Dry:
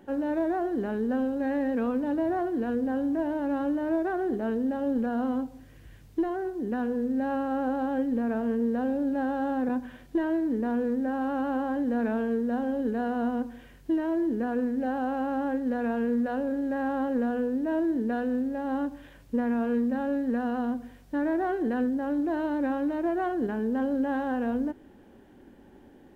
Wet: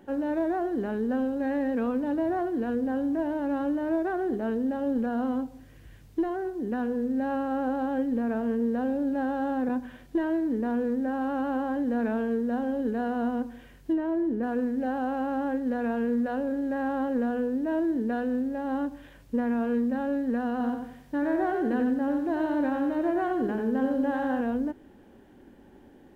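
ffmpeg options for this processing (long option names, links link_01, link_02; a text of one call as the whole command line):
ffmpeg -i in.wav -filter_complex "[0:a]asplit=3[link_01][link_02][link_03];[link_01]afade=type=out:start_time=13.92:duration=0.02[link_04];[link_02]highshelf=frequency=2800:gain=-10.5,afade=type=in:start_time=13.92:duration=0.02,afade=type=out:start_time=14.42:duration=0.02[link_05];[link_03]afade=type=in:start_time=14.42:duration=0.02[link_06];[link_04][link_05][link_06]amix=inputs=3:normalize=0,asettb=1/sr,asplit=3[link_07][link_08][link_09];[link_07]atrim=end=20.514[link_10];[link_08]atrim=start=20.51:end=24.41,asetpts=PTS-STARTPTS,afade=type=in:duration=0.004:curve=qsin,afade=type=out:start_time=3.896:duration=0.004:curve=qsin,aecho=1:1:91|182|273|364:0.531|0.181|0.0614|0.0209,atrim=end_sample=171990[link_11];[link_09]atrim=start=24.406[link_12];[link_10][link_11]acrossfade=duration=0.004:curve1=hsin:curve2=qsin[link_13];[link_13][link_12]acrossfade=duration=0.004:curve1=qsin:curve2=hsin" out.wav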